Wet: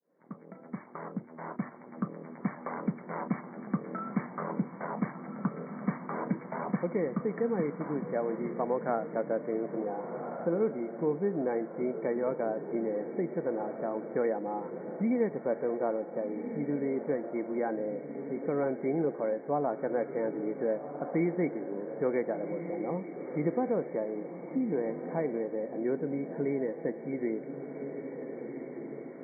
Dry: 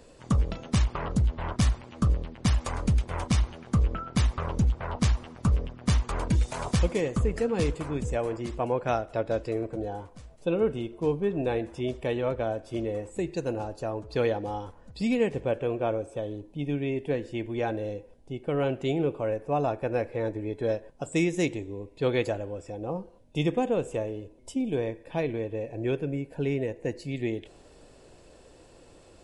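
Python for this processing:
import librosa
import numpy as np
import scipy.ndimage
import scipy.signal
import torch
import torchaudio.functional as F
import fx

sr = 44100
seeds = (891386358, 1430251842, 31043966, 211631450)

y = fx.fade_in_head(x, sr, length_s=2.92)
y = fx.brickwall_bandpass(y, sr, low_hz=150.0, high_hz=2300.0)
y = fx.air_absorb(y, sr, metres=360.0)
y = fx.echo_diffused(y, sr, ms=1453, feedback_pct=46, wet_db=-11.0)
y = fx.band_squash(y, sr, depth_pct=40)
y = y * librosa.db_to_amplitude(-1.5)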